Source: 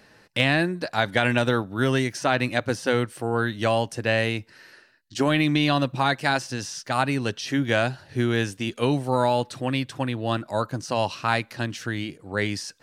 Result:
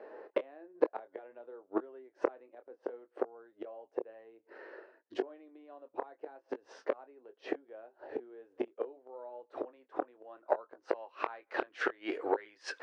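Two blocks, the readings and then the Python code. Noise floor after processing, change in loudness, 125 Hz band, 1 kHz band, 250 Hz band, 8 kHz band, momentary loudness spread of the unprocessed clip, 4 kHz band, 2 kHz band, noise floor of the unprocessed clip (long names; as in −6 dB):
−75 dBFS, −15.0 dB, below −40 dB, −15.5 dB, −18.5 dB, below −25 dB, 7 LU, −26.0 dB, −18.5 dB, −56 dBFS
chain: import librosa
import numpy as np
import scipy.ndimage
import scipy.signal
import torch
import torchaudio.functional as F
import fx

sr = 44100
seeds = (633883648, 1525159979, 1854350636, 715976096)

y = fx.filter_sweep_lowpass(x, sr, from_hz=610.0, to_hz=2000.0, start_s=8.93, end_s=12.59, q=0.77)
y = fx.gate_flip(y, sr, shuts_db=-21.0, range_db=-35)
y = fx.tube_stage(y, sr, drive_db=22.0, bias=0.45)
y = fx.chorus_voices(y, sr, voices=2, hz=0.6, base_ms=23, depth_ms=4.9, mix_pct=25)
y = scipy.signal.sosfilt(scipy.signal.ellip(3, 1.0, 40, [400.0, 9700.0], 'bandpass', fs=sr, output='sos'), y)
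y = y * librosa.db_to_amplitude(17.0)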